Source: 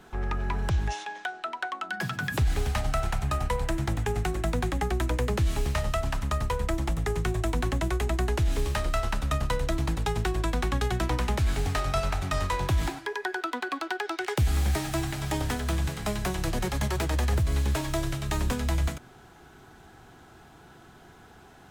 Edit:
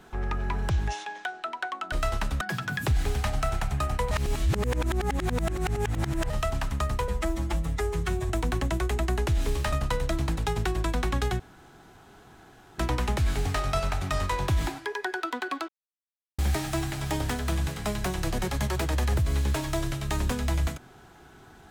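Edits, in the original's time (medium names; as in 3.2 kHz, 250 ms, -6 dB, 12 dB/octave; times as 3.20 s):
3.62–5.81 s: reverse
6.59–7.40 s: stretch 1.5×
8.83–9.32 s: move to 1.92 s
10.99 s: insert room tone 1.39 s
13.89–14.59 s: mute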